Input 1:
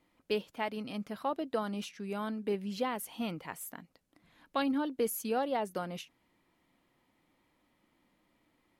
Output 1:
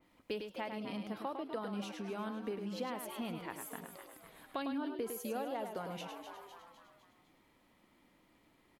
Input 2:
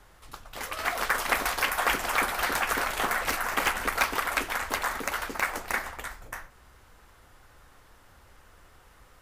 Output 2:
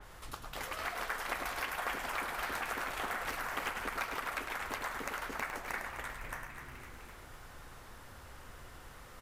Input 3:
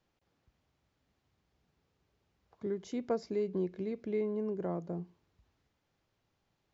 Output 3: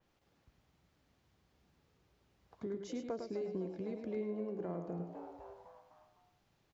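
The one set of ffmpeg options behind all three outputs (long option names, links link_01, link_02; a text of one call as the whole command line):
ffmpeg -i in.wav -filter_complex "[0:a]asplit=2[link_01][link_02];[link_02]asplit=5[link_03][link_04][link_05][link_06][link_07];[link_03]adelay=253,afreqshift=110,volume=-14.5dB[link_08];[link_04]adelay=506,afreqshift=220,volume=-20.3dB[link_09];[link_05]adelay=759,afreqshift=330,volume=-26.2dB[link_10];[link_06]adelay=1012,afreqshift=440,volume=-32dB[link_11];[link_07]adelay=1265,afreqshift=550,volume=-37.9dB[link_12];[link_08][link_09][link_10][link_11][link_12]amix=inputs=5:normalize=0[link_13];[link_01][link_13]amix=inputs=2:normalize=0,acompressor=threshold=-45dB:ratio=2.5,asplit=2[link_14][link_15];[link_15]aecho=0:1:104:0.473[link_16];[link_14][link_16]amix=inputs=2:normalize=0,adynamicequalizer=threshold=0.00126:dfrequency=3800:dqfactor=0.7:tfrequency=3800:tqfactor=0.7:attack=5:release=100:ratio=0.375:range=2:mode=cutabove:tftype=highshelf,volume=3dB" out.wav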